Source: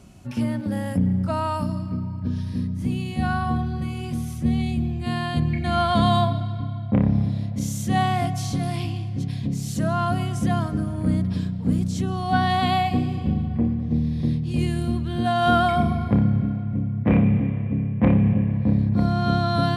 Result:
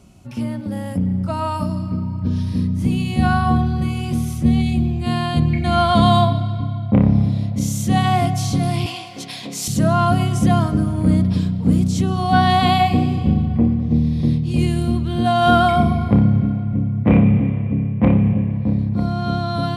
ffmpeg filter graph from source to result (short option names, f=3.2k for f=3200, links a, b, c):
-filter_complex "[0:a]asettb=1/sr,asplit=3[a][b][c];[a]atrim=end=8.864[d];[b]atrim=start=8.86:end=9.68,asetpts=PTS-STARTPTS,afade=t=in:d=0.004:c=qsin,afade=t=out:st=0.816:d=0.004:c=qsin,highpass=690,acontrast=83[e];[c]atrim=start=9.676[f];[d][e]acrossfade=d=0.004:c1=hsin:c2=qsin[g];[g][f]acrossfade=d=0.004:c1=qsin:c2=hsin,equalizer=f=1.7k:w=5.7:g=-6,dynaudnorm=f=110:g=31:m=9dB,bandreject=f=124.7:t=h:w=4,bandreject=f=249.4:t=h:w=4,bandreject=f=374.1:t=h:w=4,bandreject=f=498.8:t=h:w=4,bandreject=f=623.5:t=h:w=4,bandreject=f=748.2:t=h:w=4,bandreject=f=872.9:t=h:w=4,bandreject=f=997.6:t=h:w=4,bandreject=f=1.1223k:t=h:w=4,bandreject=f=1.247k:t=h:w=4,bandreject=f=1.3717k:t=h:w=4,bandreject=f=1.4964k:t=h:w=4,bandreject=f=1.6211k:t=h:w=4,bandreject=f=1.7458k:t=h:w=4,bandreject=f=1.8705k:t=h:w=4,bandreject=f=1.9952k:t=h:w=4,bandreject=f=2.1199k:t=h:w=4,bandreject=f=2.2446k:t=h:w=4,bandreject=f=2.3693k:t=h:w=4,bandreject=f=2.494k:t=h:w=4,bandreject=f=2.6187k:t=h:w=4,bandreject=f=2.7434k:t=h:w=4,bandreject=f=2.8681k:t=h:w=4,bandreject=f=2.9928k:t=h:w=4,bandreject=f=3.1175k:t=h:w=4,bandreject=f=3.2422k:t=h:w=4,bandreject=f=3.3669k:t=h:w=4,bandreject=f=3.4916k:t=h:w=4,bandreject=f=3.6163k:t=h:w=4,bandreject=f=3.741k:t=h:w=4,bandreject=f=3.8657k:t=h:w=4,bandreject=f=3.9904k:t=h:w=4,bandreject=f=4.1151k:t=h:w=4,bandreject=f=4.2398k:t=h:w=4,bandreject=f=4.3645k:t=h:w=4,bandreject=f=4.4892k:t=h:w=4,bandreject=f=4.6139k:t=h:w=4,bandreject=f=4.7386k:t=h:w=4,bandreject=f=4.8633k:t=h:w=4,bandreject=f=4.988k:t=h:w=4"